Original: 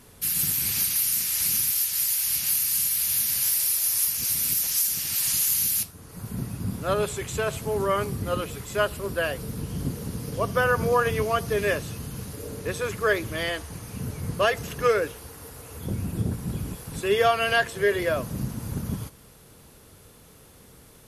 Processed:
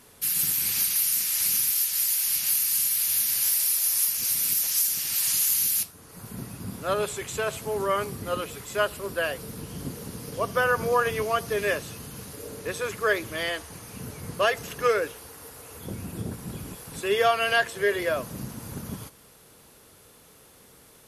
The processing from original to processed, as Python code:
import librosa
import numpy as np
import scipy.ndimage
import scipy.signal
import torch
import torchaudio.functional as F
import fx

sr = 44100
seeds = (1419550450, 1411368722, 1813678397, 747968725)

y = fx.low_shelf(x, sr, hz=200.0, db=-10.5)